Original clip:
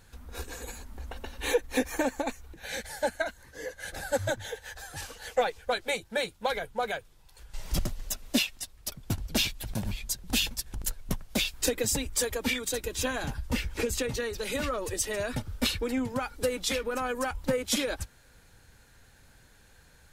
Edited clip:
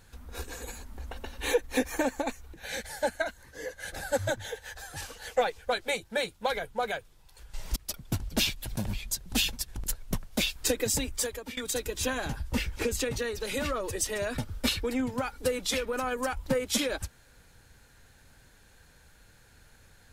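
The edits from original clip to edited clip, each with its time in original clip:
0:07.76–0:08.74: remove
0:12.06–0:12.55: fade out linear, to −18 dB

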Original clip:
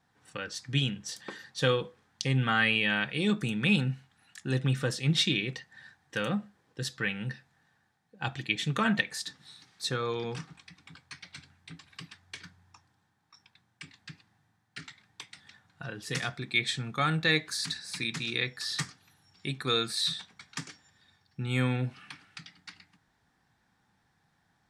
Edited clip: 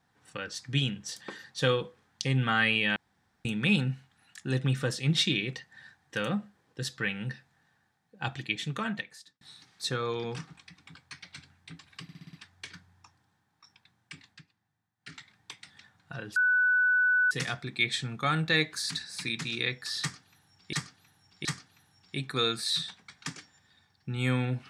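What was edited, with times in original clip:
0:02.96–0:03.45: fill with room tone
0:08.30–0:09.41: fade out
0:12.03: stutter 0.06 s, 6 plays
0:13.95–0:14.87: duck −11.5 dB, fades 0.19 s
0:16.06: insert tone 1,490 Hz −21 dBFS 0.95 s
0:18.76–0:19.48: repeat, 3 plays

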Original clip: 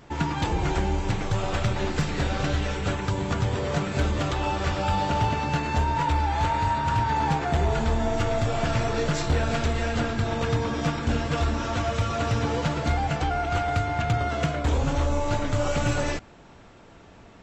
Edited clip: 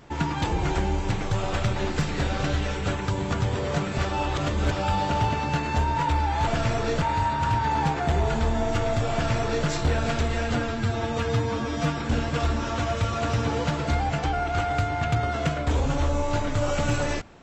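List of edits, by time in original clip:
0:03.98–0:04.71: reverse
0:08.57–0:09.12: duplicate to 0:06.47
0:10.00–0:10.95: time-stretch 1.5×

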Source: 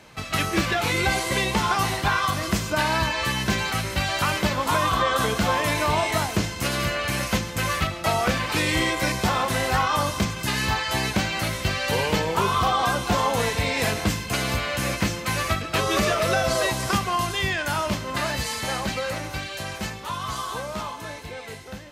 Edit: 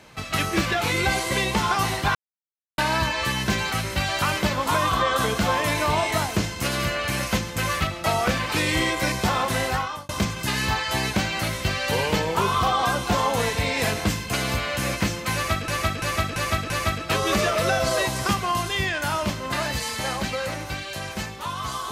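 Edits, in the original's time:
0:02.15–0:02.78: silence
0:09.62–0:10.09: fade out
0:15.34–0:15.68: repeat, 5 plays

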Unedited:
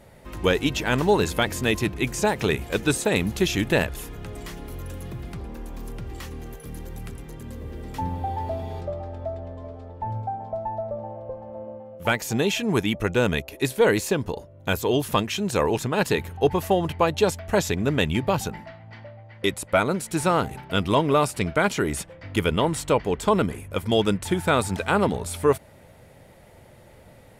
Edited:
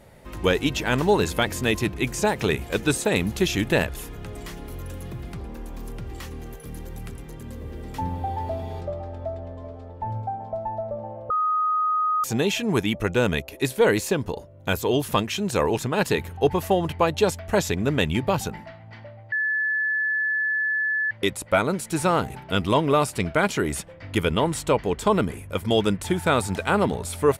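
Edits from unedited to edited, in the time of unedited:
0:11.30–0:12.24: beep over 1,250 Hz −19.5 dBFS
0:19.32: insert tone 1,730 Hz −21 dBFS 1.79 s

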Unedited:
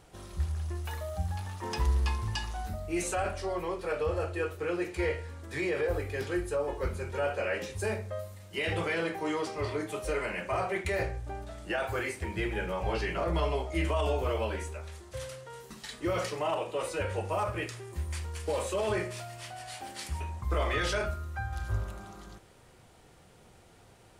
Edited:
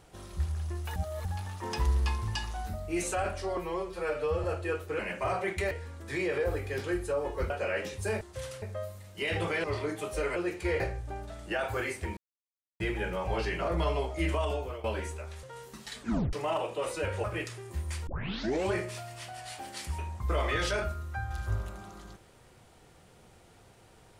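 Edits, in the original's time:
0:00.96–0:01.25: reverse
0:03.57–0:04.15: time-stretch 1.5×
0:04.70–0:05.14: swap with 0:10.27–0:10.99
0:06.93–0:07.27: remove
0:09.00–0:09.55: remove
0:12.36: splice in silence 0.63 s
0:13.90–0:14.40: fade out, to −14.5 dB
0:14.99–0:15.40: move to 0:07.98
0:15.97: tape stop 0.33 s
0:17.21–0:17.46: remove
0:18.29: tape start 0.66 s

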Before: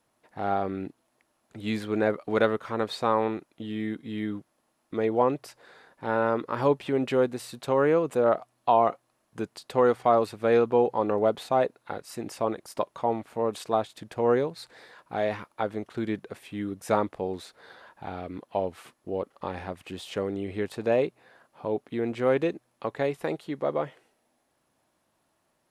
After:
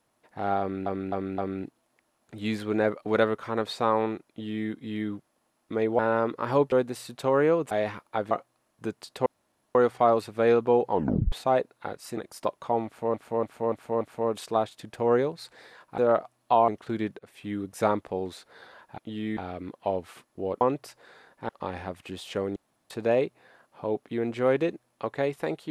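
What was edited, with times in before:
0:00.60–0:00.86: repeat, 4 plays
0:03.51–0:03.90: duplicate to 0:18.06
0:05.21–0:06.09: move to 0:19.30
0:06.82–0:07.16: remove
0:08.15–0:08.85: swap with 0:15.16–0:15.76
0:09.80: splice in room tone 0.49 s
0:10.96: tape stop 0.41 s
0:12.22–0:12.51: remove
0:13.19–0:13.48: repeat, 5 plays
0:16.27–0:16.54: fade in, from −20 dB
0:20.37–0:20.71: fill with room tone

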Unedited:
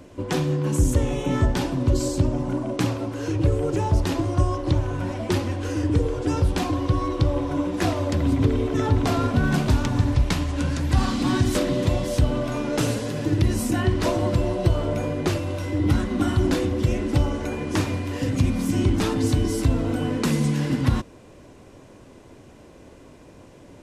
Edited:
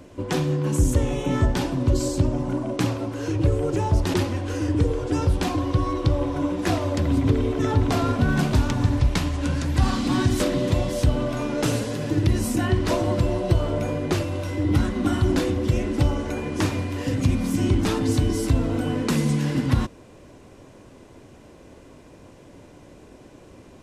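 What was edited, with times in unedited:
0:04.14–0:05.29: remove

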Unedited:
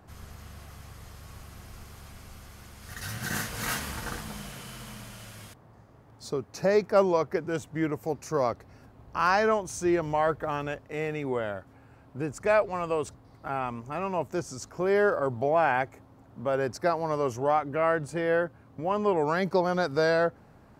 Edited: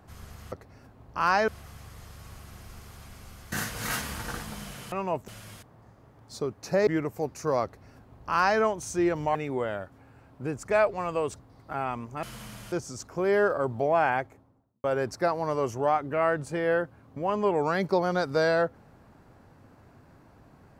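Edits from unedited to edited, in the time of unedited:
0:02.56–0:03.30: remove
0:04.70–0:05.19: swap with 0:13.98–0:14.34
0:06.78–0:07.74: remove
0:08.51–0:09.47: duplicate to 0:00.52
0:10.22–0:11.10: remove
0:15.66–0:16.46: fade out and dull

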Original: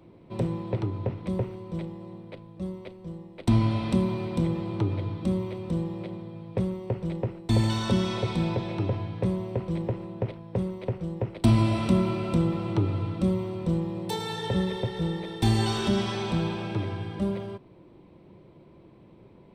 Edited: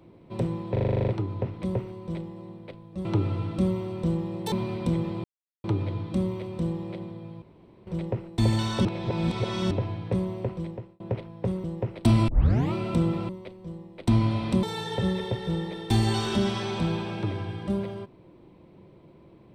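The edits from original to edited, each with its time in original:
0:00.72: stutter 0.04 s, 10 plays
0:02.69–0:04.03: swap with 0:12.68–0:14.15
0:04.75: splice in silence 0.40 s
0:06.53–0:06.98: fill with room tone
0:07.96–0:08.82: reverse
0:09.53–0:10.11: fade out
0:10.75–0:11.03: remove
0:11.67: tape start 0.45 s

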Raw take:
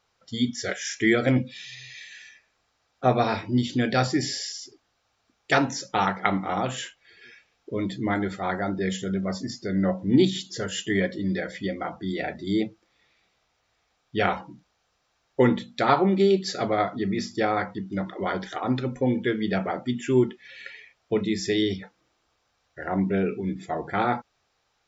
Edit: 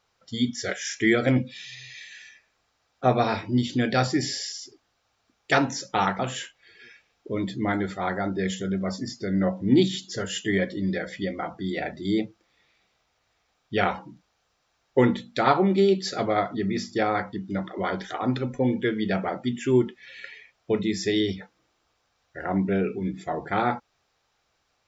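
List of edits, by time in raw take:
0:06.19–0:06.61: remove

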